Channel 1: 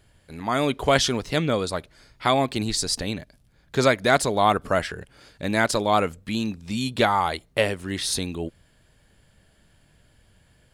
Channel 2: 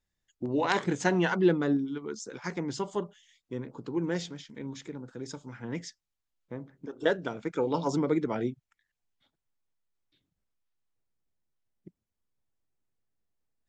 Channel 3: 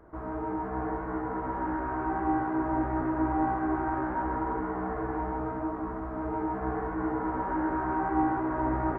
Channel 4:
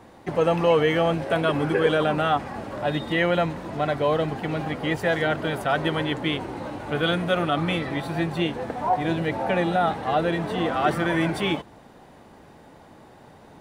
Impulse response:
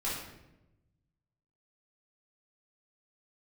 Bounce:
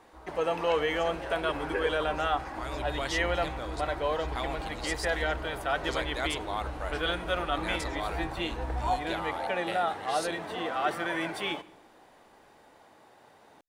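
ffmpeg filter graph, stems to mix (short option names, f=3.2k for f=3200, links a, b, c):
-filter_complex "[0:a]adelay=2100,volume=-13.5dB[a];[1:a]volume=-14.5dB[b];[2:a]asubboost=boost=10:cutoff=150,volume=-11dB,asplit=2[c][d];[d]volume=-17.5dB[e];[3:a]highpass=110,volume=-5dB,asplit=2[f][g];[g]volume=-21.5dB[h];[4:a]atrim=start_sample=2205[i];[e][h]amix=inputs=2:normalize=0[j];[j][i]afir=irnorm=-1:irlink=0[k];[a][b][c][f][k]amix=inputs=5:normalize=0,equalizer=f=160:w=0.61:g=-12.5"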